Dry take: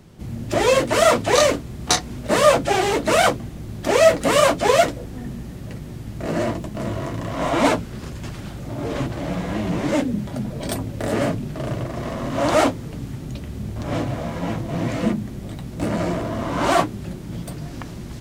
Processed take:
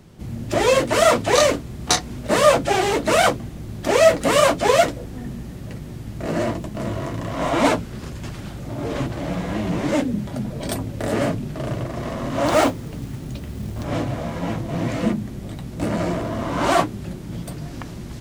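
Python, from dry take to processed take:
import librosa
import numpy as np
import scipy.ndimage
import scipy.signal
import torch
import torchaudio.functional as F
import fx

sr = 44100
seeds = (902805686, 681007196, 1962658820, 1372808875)

y = fx.quant_companded(x, sr, bits=6, at=(12.46, 13.85))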